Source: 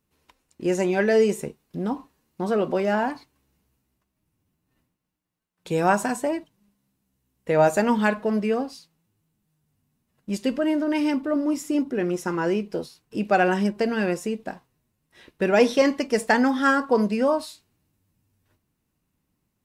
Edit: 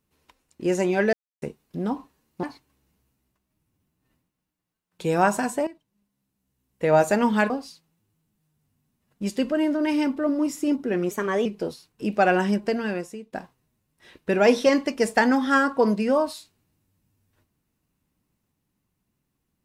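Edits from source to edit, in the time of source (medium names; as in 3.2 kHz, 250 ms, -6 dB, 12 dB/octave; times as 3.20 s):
1.13–1.42 s: mute
2.43–3.09 s: delete
6.33–7.52 s: fade in, from -14.5 dB
8.16–8.57 s: delete
12.18–12.58 s: speed 116%
13.74–14.45 s: fade out, to -18 dB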